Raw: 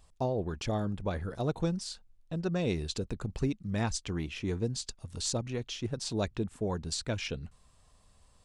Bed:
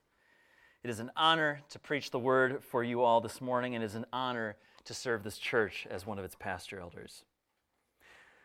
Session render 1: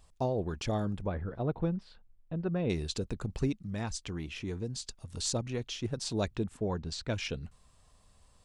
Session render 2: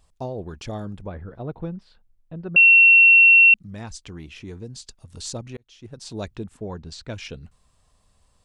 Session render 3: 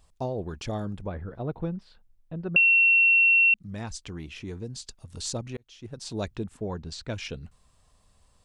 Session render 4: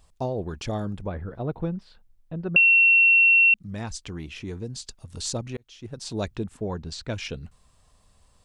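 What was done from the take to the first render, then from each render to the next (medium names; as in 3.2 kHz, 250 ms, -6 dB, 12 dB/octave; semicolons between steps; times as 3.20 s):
1.06–2.70 s: distance through air 470 m; 3.54–5.10 s: compression 1.5:1, threshold -39 dBFS; 6.57–7.10 s: distance through air 100 m
2.56–3.54 s: bleep 2.72 kHz -8.5 dBFS; 5.57–6.19 s: fade in
compression, threshold -18 dBFS, peak gain reduction 7.5 dB
trim +2.5 dB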